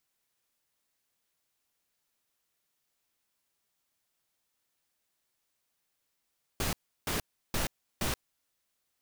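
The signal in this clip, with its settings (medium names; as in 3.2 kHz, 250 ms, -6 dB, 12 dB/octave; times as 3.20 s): noise bursts pink, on 0.13 s, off 0.34 s, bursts 4, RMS -31 dBFS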